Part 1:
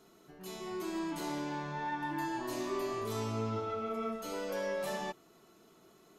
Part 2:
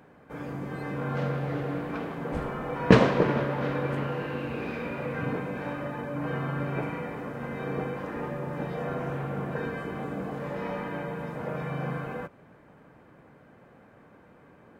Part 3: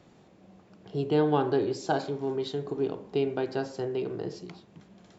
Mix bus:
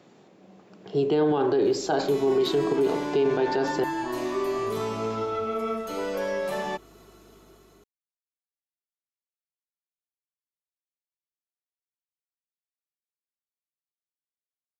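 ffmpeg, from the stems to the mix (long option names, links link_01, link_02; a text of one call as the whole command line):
ffmpeg -i stem1.wav -i stem2.wav -i stem3.wav -filter_complex "[0:a]acrossover=split=250|3400[link_01][link_02][link_03];[link_01]acompressor=threshold=-50dB:ratio=4[link_04];[link_02]acompressor=threshold=-34dB:ratio=4[link_05];[link_03]acompressor=threshold=-57dB:ratio=4[link_06];[link_04][link_05][link_06]amix=inputs=3:normalize=0,aeval=exprs='val(0)+0.000501*(sin(2*PI*50*n/s)+sin(2*PI*2*50*n/s)/2+sin(2*PI*3*50*n/s)/3+sin(2*PI*4*50*n/s)/4+sin(2*PI*5*50*n/s)/5)':channel_layout=same,adelay=1650,volume=2.5dB[link_07];[2:a]highpass=180,volume=3dB,asplit=3[link_08][link_09][link_10];[link_08]atrim=end=3.84,asetpts=PTS-STARTPTS,afade=type=out:start_time=3.836:duration=0.004:curve=hsin[link_11];[link_09]atrim=start=3.84:end=4.67,asetpts=PTS-STARTPTS,volume=0[link_12];[link_10]atrim=start=4.67,asetpts=PTS-STARTPTS,afade=type=in:duration=0.004:curve=hsin[link_13];[link_11][link_12][link_13]concat=n=3:v=0:a=1[link_14];[link_07][link_14]amix=inputs=2:normalize=0,equalizer=frequency=410:width_type=o:width=0.23:gain=3.5,dynaudnorm=framelen=350:gausssize=5:maxgain=6dB,alimiter=limit=-15.5dB:level=0:latency=1:release=25" out.wav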